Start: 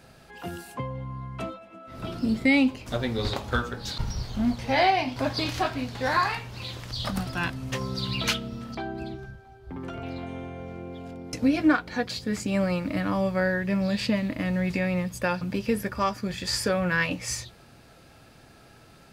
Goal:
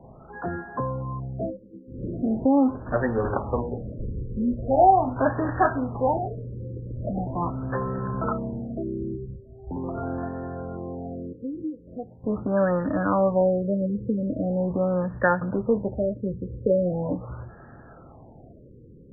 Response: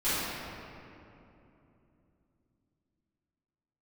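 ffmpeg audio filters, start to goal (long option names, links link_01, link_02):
-filter_complex "[0:a]asettb=1/sr,asplit=3[link_01][link_02][link_03];[link_01]atrim=end=4.404[link_04];[link_02]atrim=start=4.4:end=5.14,asetpts=PTS-STARTPTS,afade=type=in:duration=0.004:curve=qsin,afade=type=out:start_time=0.736:duration=0.004:curve=qsin,asubboost=boost=11.5:cutoff=100[link_05];[link_03]atrim=start=5.136[link_06];[link_04][link_05]acrossfade=duration=0.004:curve1=hsin:curve2=qsin[link_07];[link_07][link_06]acrossfade=duration=0.004:curve1=qsin:curve2=hsin,lowpass=frequency=6000:width_type=q:width=12,acrossover=split=300|1000[link_08][link_09][link_10];[link_08]asoftclip=type=tanh:threshold=-34.5dB[link_11];[link_11][link_09][link_10]amix=inputs=3:normalize=0,asettb=1/sr,asplit=3[link_12][link_13][link_14];[link_12]atrim=end=10.274[link_15];[link_13]atrim=start=10.27:end=12.24,asetpts=PTS-STARTPTS,afade=type=in:duration=0.004:curve=qsin,afade=type=out:start_time=1.966:duration=0.004:curve=qsin,acompressor=threshold=-35dB:ratio=8[link_16];[link_14]atrim=start=12.236[link_17];[link_15][link_16]acrossfade=duration=0.004:curve1=hsin:curve2=qsin[link_18];[link_18][link_17]acrossfade=duration=0.004:curve1=qsin:curve2=hsin,afftfilt=real='re*lt(b*sr/1024,530*pow(1900/530,0.5+0.5*sin(2*PI*0.41*pts/sr)))':imag='im*lt(b*sr/1024,530*pow(1900/530,0.5+0.5*sin(2*PI*0.41*pts/sr)))':win_size=1024:overlap=0.75,volume=6.5dB"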